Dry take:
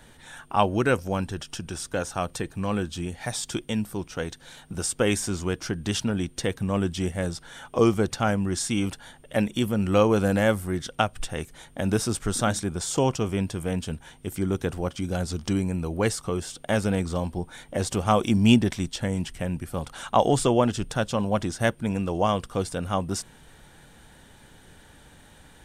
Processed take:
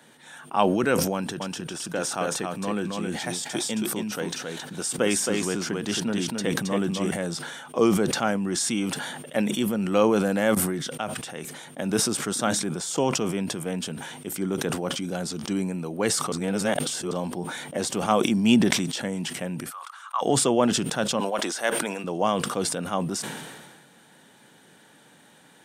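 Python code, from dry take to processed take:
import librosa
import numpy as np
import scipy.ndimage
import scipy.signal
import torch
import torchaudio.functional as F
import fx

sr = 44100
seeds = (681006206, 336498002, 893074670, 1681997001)

y = fx.echo_single(x, sr, ms=270, db=-4.0, at=(1.13, 7.11))
y = fx.env_flatten(y, sr, amount_pct=70, at=(8.35, 8.91))
y = fx.ladder_highpass(y, sr, hz=1100.0, resonance_pct=75, at=(19.69, 20.21), fade=0.02)
y = fx.highpass(y, sr, hz=500.0, slope=12, at=(21.2, 22.04))
y = fx.edit(y, sr, fx.fade_in_from(start_s=10.55, length_s=1.34, floor_db=-21.5),
    fx.reverse_span(start_s=16.32, length_s=0.79), tone=tone)
y = scipy.signal.sosfilt(scipy.signal.butter(4, 160.0, 'highpass', fs=sr, output='sos'), y)
y = fx.sustainer(y, sr, db_per_s=36.0)
y = y * librosa.db_to_amplitude(-1.0)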